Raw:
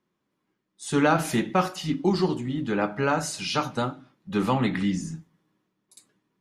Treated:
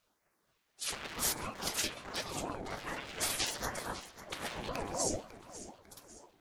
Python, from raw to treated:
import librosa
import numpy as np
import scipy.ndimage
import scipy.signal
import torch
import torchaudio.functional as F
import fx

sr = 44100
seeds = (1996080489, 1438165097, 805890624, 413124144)

p1 = np.minimum(x, 2.0 * 10.0 ** (-22.5 / 20.0) - x)
p2 = fx.over_compress(p1, sr, threshold_db=-33.0, ratio=-1.0)
p3 = fx.phaser_stages(p2, sr, stages=2, low_hz=300.0, high_hz=3200.0, hz=0.87, feedback_pct=0)
p4 = fx.spec_gate(p3, sr, threshold_db=-15, keep='weak')
p5 = fx.low_shelf(p4, sr, hz=360.0, db=5.5)
p6 = p5 + fx.echo_feedback(p5, sr, ms=549, feedback_pct=43, wet_db=-14.5, dry=0)
p7 = fx.ring_lfo(p6, sr, carrier_hz=480.0, swing_pct=40, hz=4.0)
y = p7 * 10.0 ** (8.5 / 20.0)